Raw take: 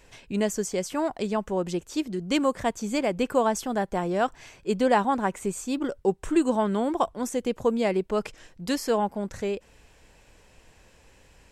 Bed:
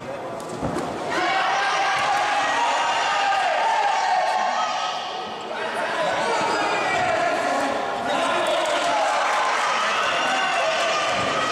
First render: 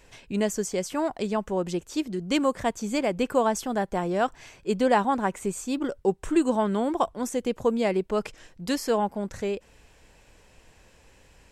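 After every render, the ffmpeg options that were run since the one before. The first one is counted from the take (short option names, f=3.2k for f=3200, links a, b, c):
-af anull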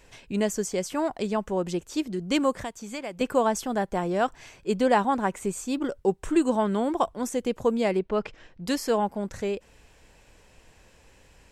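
-filter_complex "[0:a]asettb=1/sr,asplit=3[a][b][c];[a]atrim=end=2.624[d];[b]atrim=start=2.62:end=3.21,asetpts=PTS-STARTPTS,afade=t=in:d=0.004:c=qsin,afade=t=out:st=0.586:d=0.004:c=qsin,acrossover=split=750|3100[e][f][g];[e]acompressor=threshold=-38dB:ratio=4[h];[f]acompressor=threshold=-38dB:ratio=4[i];[g]acompressor=threshold=-44dB:ratio=4[j];[h][i][j]amix=inputs=3:normalize=0[k];[c]atrim=start=3.206[l];[d][k]acrossfade=d=0.004:c1=hsin:c2=qsin[m];[m][l]acrossfade=d=0.004:c1=qsin:c2=hsin,asettb=1/sr,asplit=3[n][o][p];[n]atrim=end=7.994[q];[o]atrim=start=7.99:end=8.66,asetpts=PTS-STARTPTS,afade=t=in:d=0.004:c=qsin,afade=t=out:st=0.666:d=0.004:c=qsin,lowpass=3.7k[r];[p]atrim=start=8.656[s];[q][r]acrossfade=d=0.004:c1=hsin:c2=qsin[t];[t][s]acrossfade=d=0.004:c1=qsin:c2=hsin"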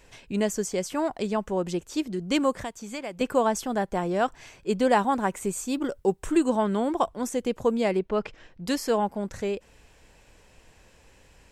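-filter_complex "[0:a]asettb=1/sr,asplit=3[a][b][c];[a]atrim=end=4.824[d];[b]atrim=start=4.82:end=6.38,asetpts=PTS-STARTPTS,afade=t=in:d=0.004:c=qsin,afade=t=out:st=1.556:d=0.004:c=qsin,highshelf=f=9.5k:g=7.5[e];[c]atrim=start=6.376[f];[d][e]acrossfade=d=0.004:c1=hsin:c2=qsin[g];[g][f]acrossfade=d=0.004:c1=qsin:c2=hsin"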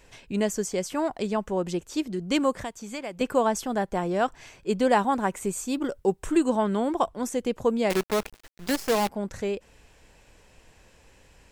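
-filter_complex "[0:a]asettb=1/sr,asplit=3[a][b][c];[a]atrim=end=7.904[d];[b]atrim=start=7.9:end=9.09,asetpts=PTS-STARTPTS,afade=t=in:d=0.004:c=qsin,afade=t=out:st=1.186:d=0.004:c=qsin,acrusher=bits=5:dc=4:mix=0:aa=0.000001[e];[c]atrim=start=9.086[f];[d][e]acrossfade=d=0.004:c1=hsin:c2=qsin[g];[g][f]acrossfade=d=0.004:c1=qsin:c2=hsin"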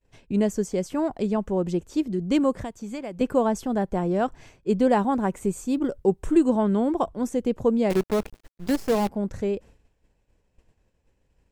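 -af "agate=range=-33dB:threshold=-44dB:ratio=3:detection=peak,tiltshelf=f=640:g=6"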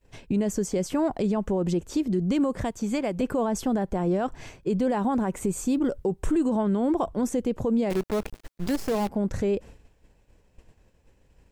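-filter_complex "[0:a]asplit=2[a][b];[b]acompressor=threshold=-30dB:ratio=6,volume=2.5dB[c];[a][c]amix=inputs=2:normalize=0,alimiter=limit=-17dB:level=0:latency=1:release=38"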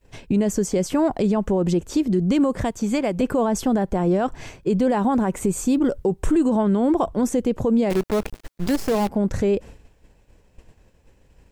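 -af "volume=5dB"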